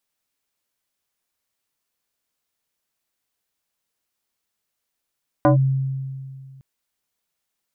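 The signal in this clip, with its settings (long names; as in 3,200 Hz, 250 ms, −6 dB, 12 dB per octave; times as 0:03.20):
two-operator FM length 1.16 s, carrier 134 Hz, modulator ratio 3.29, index 2.1, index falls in 0.12 s linear, decay 2.16 s, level −10 dB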